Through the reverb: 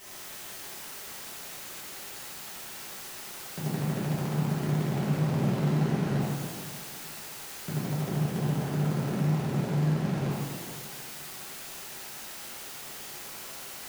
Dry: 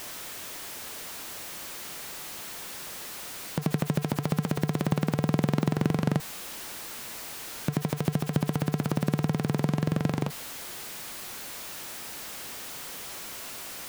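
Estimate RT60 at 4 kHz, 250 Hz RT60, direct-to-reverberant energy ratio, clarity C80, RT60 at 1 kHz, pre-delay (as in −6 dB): 2.2 s, 2.0 s, −10.0 dB, −1.0 dB, 2.3 s, 3 ms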